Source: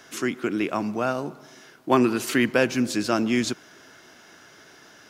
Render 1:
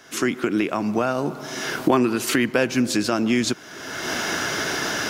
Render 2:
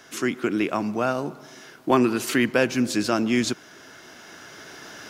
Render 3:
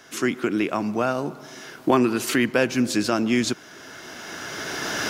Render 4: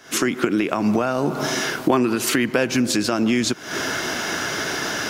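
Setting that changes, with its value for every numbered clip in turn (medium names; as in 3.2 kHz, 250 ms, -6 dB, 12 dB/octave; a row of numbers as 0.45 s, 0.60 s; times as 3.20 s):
recorder AGC, rising by: 35 dB/s, 5.1 dB/s, 14 dB/s, 90 dB/s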